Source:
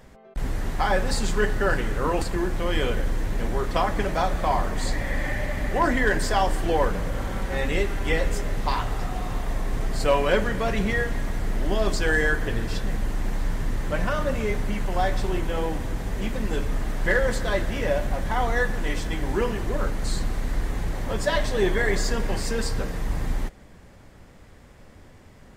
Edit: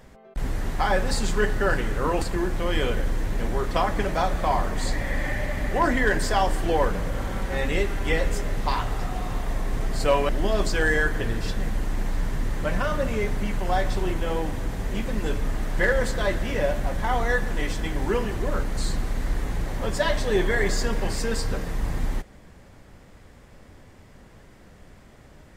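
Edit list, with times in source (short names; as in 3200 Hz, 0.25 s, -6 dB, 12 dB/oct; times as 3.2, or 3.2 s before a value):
10.29–11.56 cut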